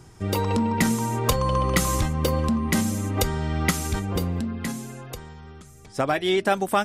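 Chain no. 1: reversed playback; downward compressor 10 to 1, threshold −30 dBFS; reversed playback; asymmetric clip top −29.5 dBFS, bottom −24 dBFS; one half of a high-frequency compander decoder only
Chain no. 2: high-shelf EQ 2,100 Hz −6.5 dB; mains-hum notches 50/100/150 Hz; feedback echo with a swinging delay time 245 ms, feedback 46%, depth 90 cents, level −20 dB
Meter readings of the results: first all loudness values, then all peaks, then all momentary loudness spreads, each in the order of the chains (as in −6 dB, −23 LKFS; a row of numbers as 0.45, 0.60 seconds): −35.5, −25.5 LKFS; −23.5, −9.5 dBFS; 6, 14 LU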